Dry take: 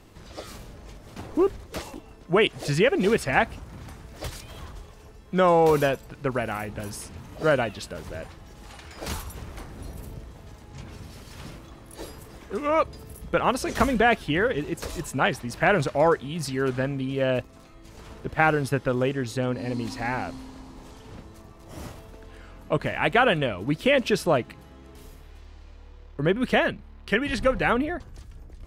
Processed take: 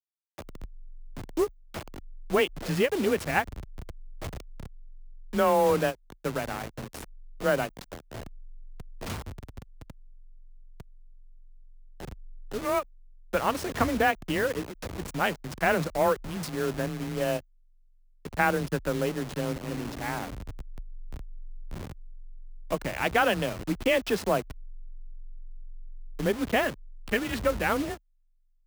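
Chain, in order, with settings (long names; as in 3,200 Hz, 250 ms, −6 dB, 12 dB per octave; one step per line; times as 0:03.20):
hold until the input has moved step −28 dBFS
frequency shifter +22 Hz
every ending faded ahead of time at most 430 dB per second
level −3.5 dB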